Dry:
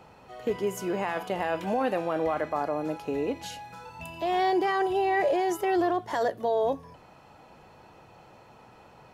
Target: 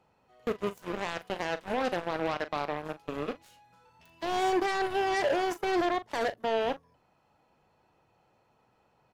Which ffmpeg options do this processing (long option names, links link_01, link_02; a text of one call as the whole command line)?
ffmpeg -i in.wav -filter_complex "[0:a]aeval=exprs='0.168*(cos(1*acos(clip(val(0)/0.168,-1,1)))-cos(1*PI/2))+0.0299*(cos(7*acos(clip(val(0)/0.168,-1,1)))-cos(7*PI/2))':channel_layout=same,asplit=2[link_01][link_02];[link_02]adelay=40,volume=-13.5dB[link_03];[link_01][link_03]amix=inputs=2:normalize=0,volume=-3.5dB" out.wav